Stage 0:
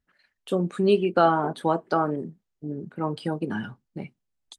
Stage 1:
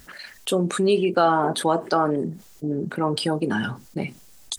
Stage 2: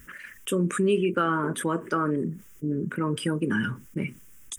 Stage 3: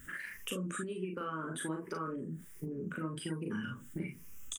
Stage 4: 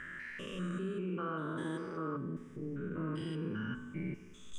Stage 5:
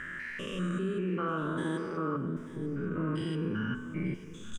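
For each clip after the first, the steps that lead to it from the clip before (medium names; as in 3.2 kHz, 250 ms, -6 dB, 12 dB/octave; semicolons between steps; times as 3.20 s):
tone controls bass -4 dB, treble +8 dB; level flattener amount 50%
static phaser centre 1.8 kHz, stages 4
drifting ripple filter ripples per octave 0.83, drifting +1.3 Hz, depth 7 dB; compression 6:1, threshold -34 dBFS, peak gain reduction 15 dB; on a send: early reflections 38 ms -3.5 dB, 50 ms -8.5 dB; on the sum: trim -4 dB
spectrogram pixelated in time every 200 ms; distance through air 120 m; on a send at -7.5 dB: reverberation RT60 1.3 s, pre-delay 5 ms; on the sum: trim +2.5 dB
delay 889 ms -16.5 dB; trim +5.5 dB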